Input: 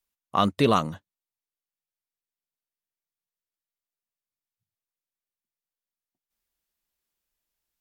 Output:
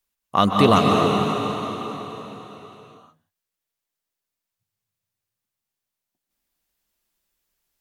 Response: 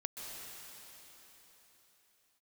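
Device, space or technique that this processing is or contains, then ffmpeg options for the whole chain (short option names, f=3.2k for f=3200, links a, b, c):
cathedral: -filter_complex "[1:a]atrim=start_sample=2205[a];[0:a][a]afir=irnorm=-1:irlink=0,volume=7.5dB"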